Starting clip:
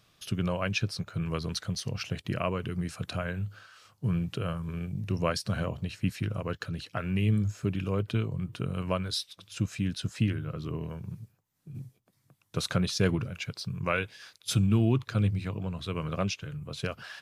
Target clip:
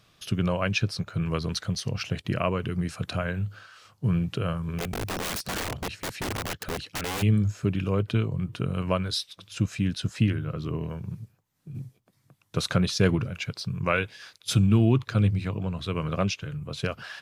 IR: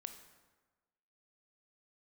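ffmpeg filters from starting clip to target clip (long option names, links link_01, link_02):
-filter_complex "[0:a]highshelf=frequency=7300:gain=-4.5,asplit=3[link_01][link_02][link_03];[link_01]afade=type=out:start_time=4.78:duration=0.02[link_04];[link_02]aeval=exprs='(mod(29.9*val(0)+1,2)-1)/29.9':channel_layout=same,afade=type=in:start_time=4.78:duration=0.02,afade=type=out:start_time=7.21:duration=0.02[link_05];[link_03]afade=type=in:start_time=7.21:duration=0.02[link_06];[link_04][link_05][link_06]amix=inputs=3:normalize=0,volume=4dB"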